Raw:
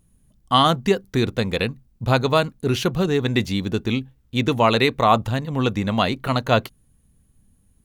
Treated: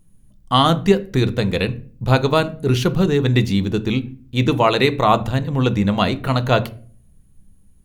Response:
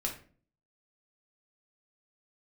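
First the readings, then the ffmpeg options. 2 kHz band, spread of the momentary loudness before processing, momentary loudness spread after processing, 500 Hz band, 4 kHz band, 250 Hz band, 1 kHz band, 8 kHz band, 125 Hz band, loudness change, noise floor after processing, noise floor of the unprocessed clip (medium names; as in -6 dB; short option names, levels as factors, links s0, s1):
+1.0 dB, 8 LU, 7 LU, +2.5 dB, +1.0 dB, +3.5 dB, +1.0 dB, +1.0 dB, +5.0 dB, +2.5 dB, -51 dBFS, -61 dBFS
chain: -filter_complex "[0:a]asplit=2[s0][s1];[1:a]atrim=start_sample=2205,lowshelf=f=420:g=11[s2];[s1][s2]afir=irnorm=-1:irlink=0,volume=0.251[s3];[s0][s3]amix=inputs=2:normalize=0,volume=0.891"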